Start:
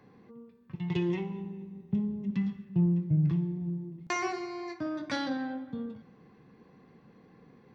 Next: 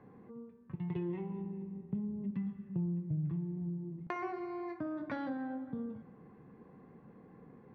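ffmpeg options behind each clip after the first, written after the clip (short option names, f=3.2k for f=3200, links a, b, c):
-af "lowpass=1.5k,acompressor=threshold=-39dB:ratio=2.5,volume=1dB"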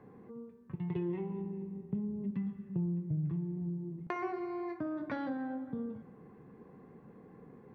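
-af "equalizer=f=410:w=3.8:g=3.5,volume=1dB"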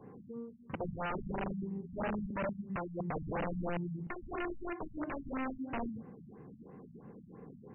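-af "aeval=exprs='(mod(47.3*val(0)+1,2)-1)/47.3':c=same,afftfilt=real='re*lt(b*sr/1024,240*pow(3100/240,0.5+0.5*sin(2*PI*3*pts/sr)))':imag='im*lt(b*sr/1024,240*pow(3100/240,0.5+0.5*sin(2*PI*3*pts/sr)))':win_size=1024:overlap=0.75,volume=3dB"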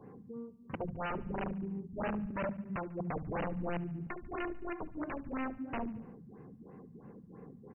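-af "aecho=1:1:72|144|216|288|360:0.112|0.0662|0.0391|0.023|0.0136"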